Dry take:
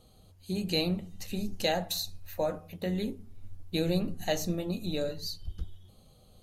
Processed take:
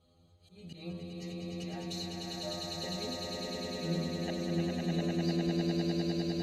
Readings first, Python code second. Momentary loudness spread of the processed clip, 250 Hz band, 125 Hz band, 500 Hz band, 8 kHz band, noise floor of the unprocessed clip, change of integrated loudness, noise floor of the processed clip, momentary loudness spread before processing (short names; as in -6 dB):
11 LU, 0.0 dB, +0.5 dB, -4.5 dB, -4.5 dB, -59 dBFS, -2.5 dB, -64 dBFS, 11 LU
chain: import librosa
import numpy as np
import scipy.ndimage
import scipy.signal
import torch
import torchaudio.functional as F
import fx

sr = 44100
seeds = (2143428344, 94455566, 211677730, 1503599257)

p1 = scipy.signal.sosfilt(scipy.signal.butter(2, 45.0, 'highpass', fs=sr, output='sos'), x)
p2 = fx.air_absorb(p1, sr, metres=78.0)
p3 = fx.stiff_resonator(p2, sr, f0_hz=83.0, decay_s=0.42, stiffness=0.002)
p4 = fx.auto_swell(p3, sr, attack_ms=299.0)
p5 = p4 + fx.echo_swell(p4, sr, ms=101, loudest=8, wet_db=-3.0, dry=0)
y = p5 * 10.0 ** (4.5 / 20.0)